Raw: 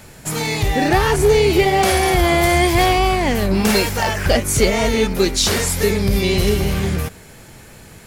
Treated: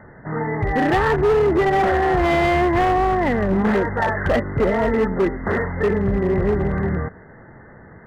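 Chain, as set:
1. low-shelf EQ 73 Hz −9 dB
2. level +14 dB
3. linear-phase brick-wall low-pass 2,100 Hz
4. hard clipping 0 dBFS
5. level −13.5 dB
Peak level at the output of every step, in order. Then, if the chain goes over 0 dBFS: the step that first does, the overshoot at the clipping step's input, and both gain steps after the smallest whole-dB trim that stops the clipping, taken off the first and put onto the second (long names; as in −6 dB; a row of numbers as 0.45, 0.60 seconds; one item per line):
−4.5, +9.5, +8.5, 0.0, −13.5 dBFS
step 2, 8.5 dB
step 2 +5 dB, step 5 −4.5 dB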